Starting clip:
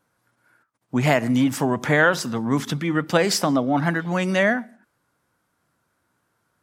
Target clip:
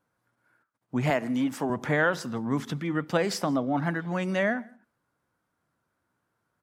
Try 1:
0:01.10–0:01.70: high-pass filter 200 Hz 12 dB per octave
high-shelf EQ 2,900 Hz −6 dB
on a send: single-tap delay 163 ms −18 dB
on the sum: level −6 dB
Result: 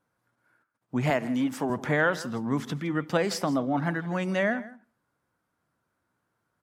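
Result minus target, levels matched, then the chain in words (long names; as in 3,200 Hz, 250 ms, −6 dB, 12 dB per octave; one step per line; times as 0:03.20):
echo-to-direct +9 dB
0:01.10–0:01.70: high-pass filter 200 Hz 12 dB per octave
high-shelf EQ 2,900 Hz −6 dB
on a send: single-tap delay 163 ms −27 dB
on the sum: level −6 dB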